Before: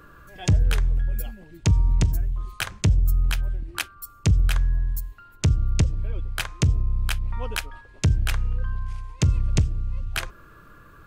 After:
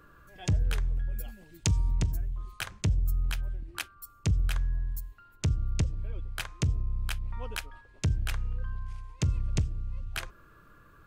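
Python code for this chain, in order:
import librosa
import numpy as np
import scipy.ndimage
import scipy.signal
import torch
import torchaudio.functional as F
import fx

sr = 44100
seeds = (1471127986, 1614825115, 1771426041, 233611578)

y = fx.high_shelf(x, sr, hz=3100.0, db=11.5, at=(1.28, 1.91))
y = y * 10.0 ** (-7.5 / 20.0)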